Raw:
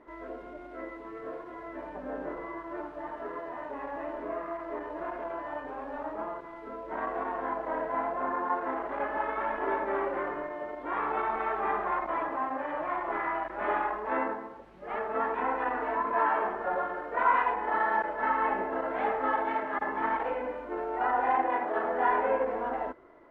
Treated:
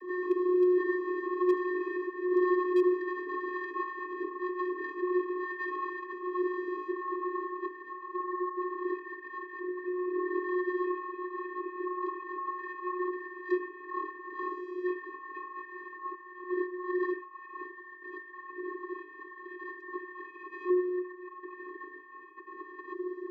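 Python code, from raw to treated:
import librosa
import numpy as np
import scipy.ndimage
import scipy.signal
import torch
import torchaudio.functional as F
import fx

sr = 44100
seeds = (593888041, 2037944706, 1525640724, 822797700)

p1 = fx.highpass(x, sr, hz=140.0, slope=6)
p2 = fx.peak_eq(p1, sr, hz=1700.0, db=9.0, octaves=0.2)
p3 = fx.notch(p2, sr, hz=1300.0, q=12.0)
p4 = fx.over_compress(p3, sr, threshold_db=-40.0, ratio=-1.0)
p5 = 10.0 ** (-27.5 / 20.0) * np.tanh(p4 / 10.0 ** (-27.5 / 20.0))
p6 = fx.vocoder(p5, sr, bands=32, carrier='square', carrier_hz=362.0)
p7 = 10.0 ** (-25.0 / 20.0) * (np.abs((p6 / 10.0 ** (-25.0 / 20.0) + 3.0) % 4.0 - 2.0) - 1.0)
p8 = p7 + fx.echo_single(p7, sr, ms=77, db=-19.5, dry=0)
y = p8 * 10.0 ** (6.0 / 20.0)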